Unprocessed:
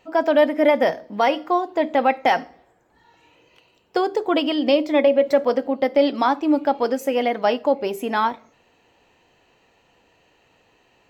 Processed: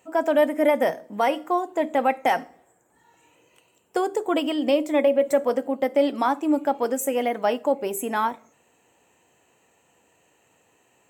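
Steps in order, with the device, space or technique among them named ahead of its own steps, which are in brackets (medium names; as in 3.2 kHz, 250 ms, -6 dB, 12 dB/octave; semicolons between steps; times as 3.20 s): budget condenser microphone (high-pass 93 Hz; resonant high shelf 6.2 kHz +10 dB, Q 3); trim -3 dB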